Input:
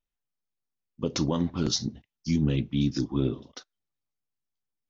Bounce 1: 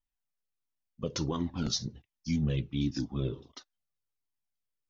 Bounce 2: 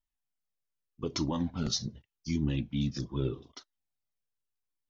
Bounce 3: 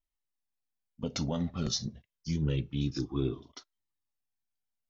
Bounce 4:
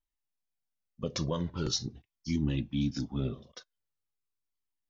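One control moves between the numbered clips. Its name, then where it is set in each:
flanger whose copies keep moving one way, speed: 1.4, 0.83, 0.27, 0.43 Hertz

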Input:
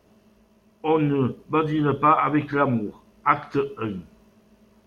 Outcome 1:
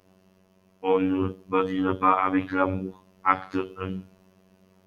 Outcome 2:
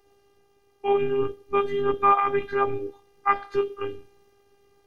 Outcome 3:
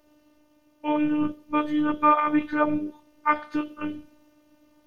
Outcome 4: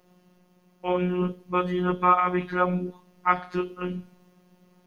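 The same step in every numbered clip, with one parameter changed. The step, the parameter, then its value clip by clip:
phases set to zero, frequency: 94, 400, 300, 180 Hertz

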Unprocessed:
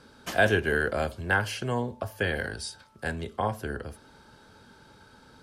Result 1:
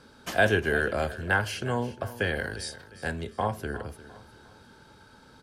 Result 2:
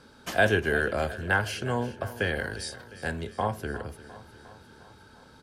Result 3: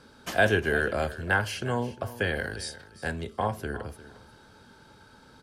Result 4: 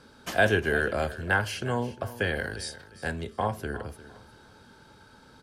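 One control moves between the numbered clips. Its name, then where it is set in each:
repeating echo, feedback: 39, 62, 16, 26%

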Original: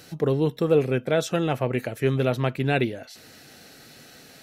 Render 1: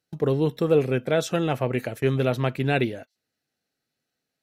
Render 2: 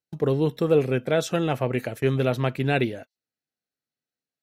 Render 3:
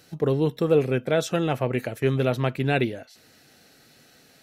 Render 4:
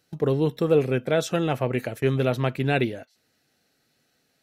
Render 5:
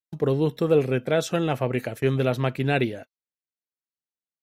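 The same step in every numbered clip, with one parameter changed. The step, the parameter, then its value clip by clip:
noise gate, range: −34, −46, −7, −21, −59 decibels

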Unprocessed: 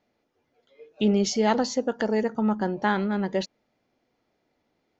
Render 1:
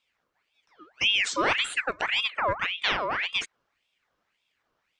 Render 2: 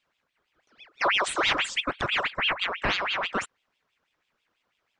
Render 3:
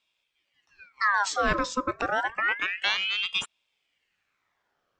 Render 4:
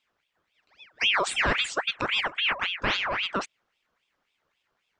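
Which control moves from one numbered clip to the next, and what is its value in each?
ring modulator whose carrier an LFO sweeps, at: 1.8, 6.1, 0.29, 3.7 Hertz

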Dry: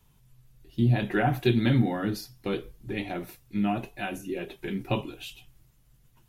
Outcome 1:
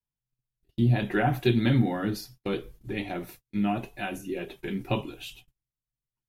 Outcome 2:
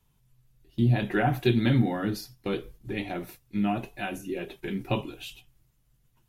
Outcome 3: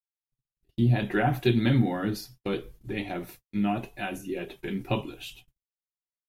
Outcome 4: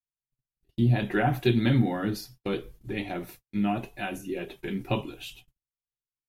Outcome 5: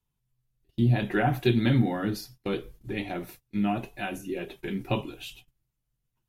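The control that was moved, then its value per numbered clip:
noise gate, range: −32, −6, −59, −46, −19 decibels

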